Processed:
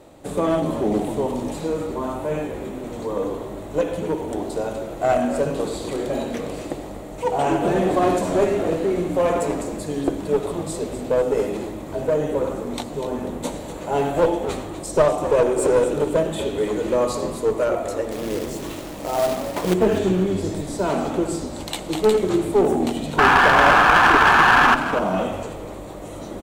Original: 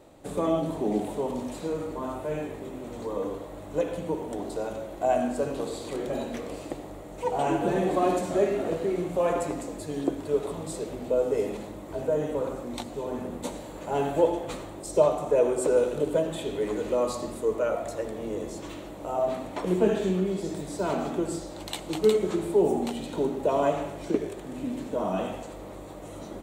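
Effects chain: 18.11–19.74 s: companded quantiser 4-bit; 23.18–24.75 s: painted sound noise 710–1800 Hz -18 dBFS; one-sided clip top -22 dBFS; frequency-shifting echo 246 ms, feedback 33%, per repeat -89 Hz, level -11 dB; trim +6 dB

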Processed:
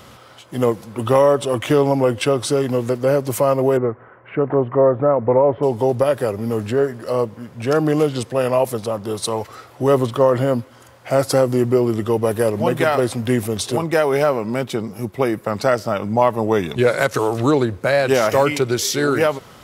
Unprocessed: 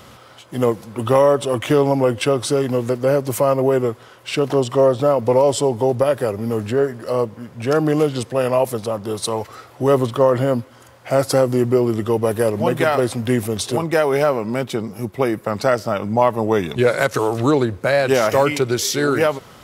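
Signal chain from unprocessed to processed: 3.77–5.63 s: steep low-pass 2 kHz 36 dB/octave

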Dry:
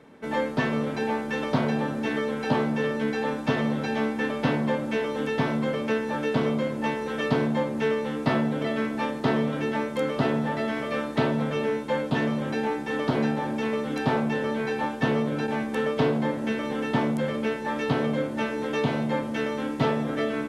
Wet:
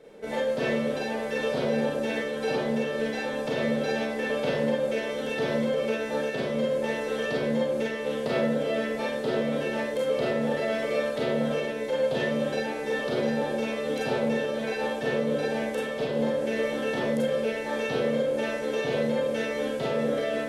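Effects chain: graphic EQ 125/250/500/1000/2000 Hz -8/-9/+8/-10/-4 dB; peak limiter -22 dBFS, peak gain reduction 8.5 dB; Schroeder reverb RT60 0.36 s, combs from 31 ms, DRR -3 dB

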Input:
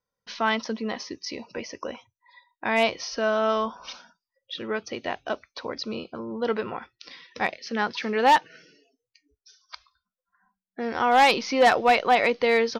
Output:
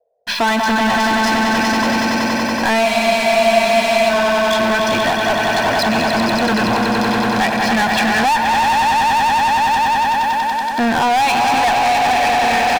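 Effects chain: low-pass 3.9 kHz 12 dB/octave; band-stop 520 Hz, Q 12; comb 1.2 ms, depth 81%; echo with a slow build-up 94 ms, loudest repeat 5, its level -8 dB; compression 4:1, threshold -25 dBFS, peak gain reduction 14 dB; waveshaping leveller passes 5; band noise 450–710 Hz -68 dBFS; spectral freeze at 2.85 s, 1.24 s; trim +1 dB

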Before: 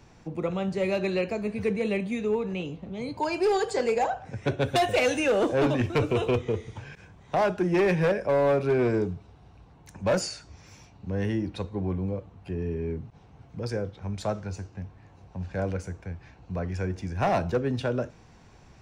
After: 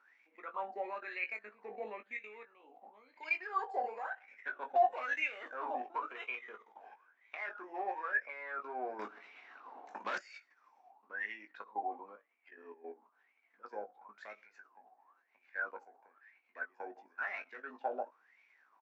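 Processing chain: level held to a coarse grid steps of 15 dB; wah-wah 0.99 Hz 740–2300 Hz, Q 17; brick-wall FIR band-pass 210–8000 Hz; doubling 19 ms -7 dB; 8.99–10.18 s: spectrum-flattening compressor 2:1; trim +13 dB

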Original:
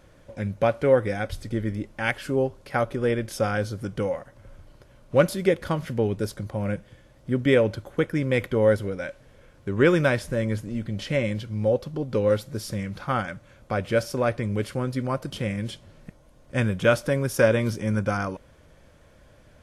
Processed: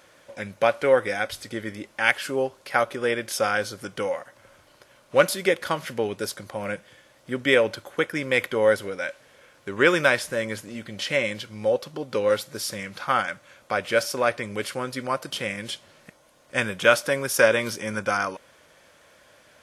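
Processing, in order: high-pass 1.1 kHz 6 dB/octave; trim +7.5 dB

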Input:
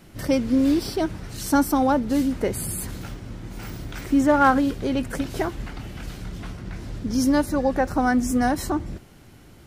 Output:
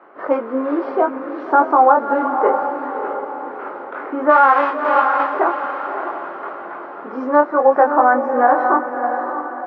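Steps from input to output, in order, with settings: 4.29–5.33 s: formants flattened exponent 0.1; high-pass 400 Hz 24 dB/octave; chorus 0.61 Hz, delay 20 ms, depth 3.8 ms; four-pole ladder low-pass 1.4 kHz, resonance 50%; echo that smears into a reverb 616 ms, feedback 43%, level -7.5 dB; loudness maximiser +22 dB; trim -1 dB

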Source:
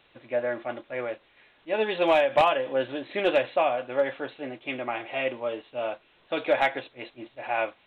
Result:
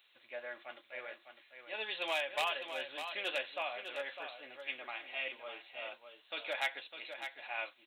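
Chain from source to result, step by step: differentiator; on a send: delay 604 ms -8.5 dB; on the sum: trim +3 dB

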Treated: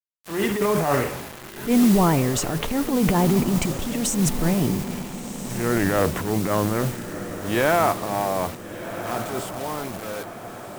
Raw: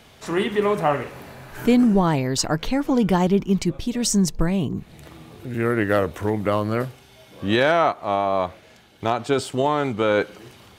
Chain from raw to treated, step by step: fade out at the end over 3.40 s; peaking EQ 4.7 kHz -14.5 dB 0.76 oct; transient shaper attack -11 dB, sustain +8 dB; modulation noise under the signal 16 dB; bit crusher 6-bit; wow and flutter 29 cents; echo that smears into a reverb 1392 ms, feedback 53%, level -11 dB

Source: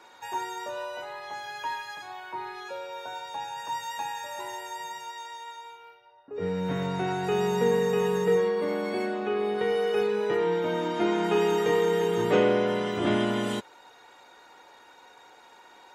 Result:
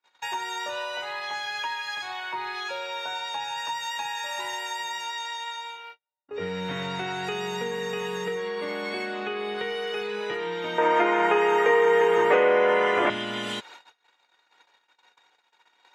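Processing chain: gate -49 dBFS, range -43 dB; peaking EQ 3 kHz +13 dB 2.9 oct; compression 6:1, threshold -28 dBFS, peak gain reduction 13.5 dB; 10.78–13.10 s: ten-band graphic EQ 125 Hz -7 dB, 500 Hz +12 dB, 1 kHz +9 dB, 2 kHz +9 dB, 4 kHz -10 dB

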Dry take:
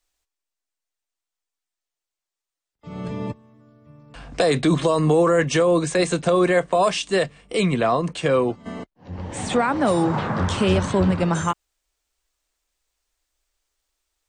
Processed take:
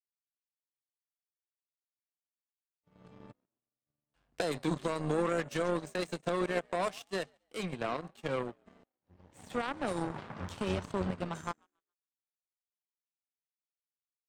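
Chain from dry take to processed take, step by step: frequency-shifting echo 138 ms, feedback 47%, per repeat +63 Hz, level -17 dB; power-law waveshaper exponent 2; trim -8.5 dB

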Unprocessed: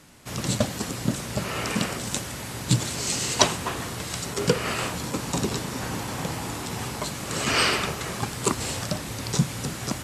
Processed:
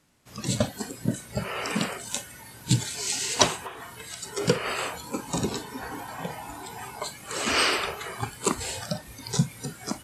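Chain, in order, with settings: spectral noise reduction 13 dB; 3.64–4.23 s: compression 6:1, threshold -34 dBFS, peak gain reduction 9 dB; trim -1 dB

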